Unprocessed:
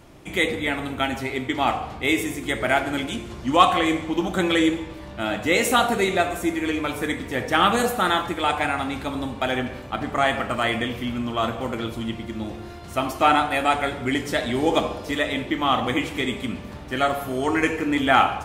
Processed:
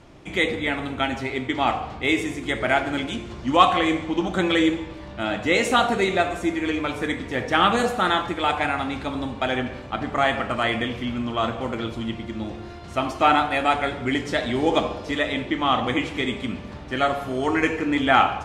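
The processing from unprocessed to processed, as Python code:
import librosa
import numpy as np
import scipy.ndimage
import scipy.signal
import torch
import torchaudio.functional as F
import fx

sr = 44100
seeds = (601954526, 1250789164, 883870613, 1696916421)

y = scipy.signal.sosfilt(scipy.signal.butter(2, 6500.0, 'lowpass', fs=sr, output='sos'), x)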